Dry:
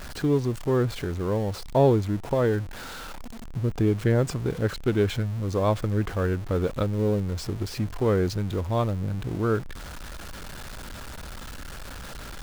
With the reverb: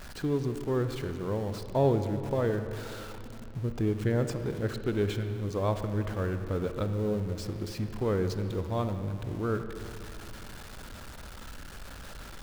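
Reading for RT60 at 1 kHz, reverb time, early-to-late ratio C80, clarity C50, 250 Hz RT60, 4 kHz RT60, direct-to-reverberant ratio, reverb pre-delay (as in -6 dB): 2.4 s, 2.5 s, 9.5 dB, 8.5 dB, 2.9 s, 2.0 s, 8.0 dB, 36 ms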